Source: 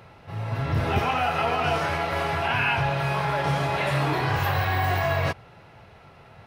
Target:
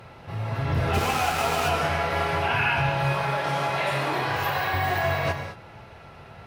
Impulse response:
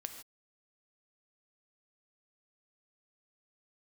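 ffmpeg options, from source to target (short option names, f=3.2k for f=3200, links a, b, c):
-filter_complex "[0:a]asplit=2[a][b];[b]acompressor=threshold=-37dB:ratio=6,volume=-3dB[c];[a][c]amix=inputs=2:normalize=0,asplit=3[d][e][f];[d]afade=t=out:st=0.93:d=0.02[g];[e]aeval=exprs='val(0)*gte(abs(val(0)),0.0596)':c=same,afade=t=in:st=0.93:d=0.02,afade=t=out:st=1.68:d=0.02[h];[f]afade=t=in:st=1.68:d=0.02[i];[g][h][i]amix=inputs=3:normalize=0,asettb=1/sr,asplit=3[j][k][l];[j]atrim=end=3.234[m];[k]atrim=start=3.23:end=4.74,asetpts=PTS-STARTPTS,afade=t=in:d=0.004:c=qsin,afade=t=out:st=1.506:d=0.004:c=qsin,highpass=f=270:p=1[n];[l]atrim=start=4.736[o];[m][n]acrossfade=d=0.004:c1=hsin:c2=qsin[p];[p][o]acrossfade=d=0.004:c1=qsin:c2=hsin[q];[1:a]atrim=start_sample=2205,asetrate=31752,aresample=44100[r];[q][r]afir=irnorm=-1:irlink=0"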